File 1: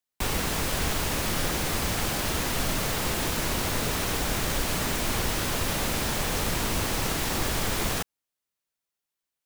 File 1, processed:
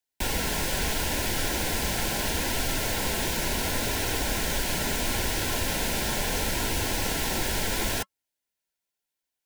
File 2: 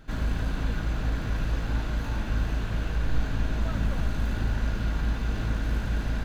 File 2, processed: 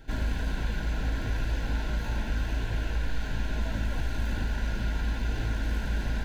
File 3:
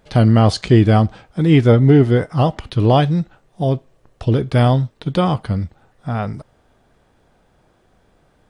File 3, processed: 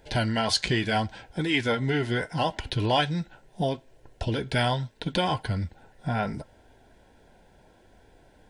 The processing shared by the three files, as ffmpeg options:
-filter_complex "[0:a]acrossover=split=1000[s0][s1];[s0]acompressor=threshold=0.0562:ratio=6[s2];[s2][s1]amix=inputs=2:normalize=0,equalizer=f=150:w=1.8:g=-3,asoftclip=type=tanh:threshold=0.376,flanger=delay=2.3:depth=3.4:regen=-66:speed=0.74:shape=triangular,asuperstop=centerf=1200:order=20:qfactor=5,volume=1.78"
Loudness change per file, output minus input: 0.0 LU, -2.0 LU, -11.5 LU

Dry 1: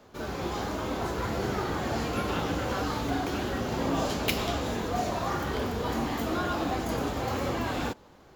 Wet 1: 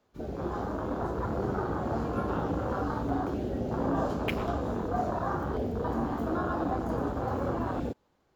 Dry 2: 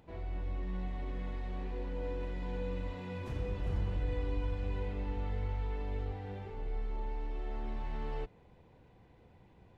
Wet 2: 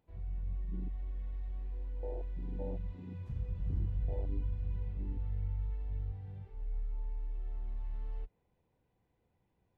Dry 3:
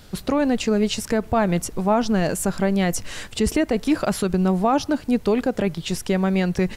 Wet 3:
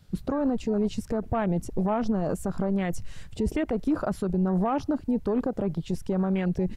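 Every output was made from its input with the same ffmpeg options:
-af "afwtdn=0.0355,alimiter=limit=0.126:level=0:latency=1:release=31"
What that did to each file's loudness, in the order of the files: -1.5 LU, -1.0 LU, -6.0 LU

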